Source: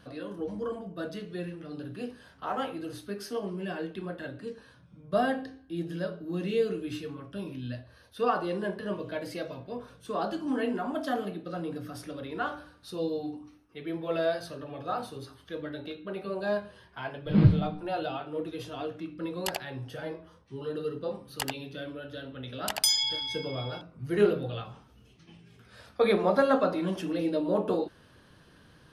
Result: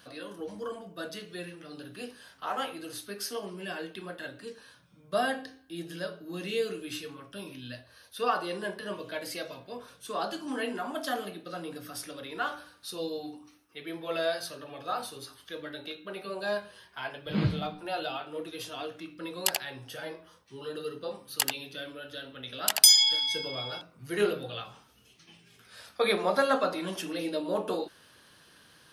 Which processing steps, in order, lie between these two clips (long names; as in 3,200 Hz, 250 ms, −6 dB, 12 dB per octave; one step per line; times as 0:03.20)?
spectral tilt +3 dB per octave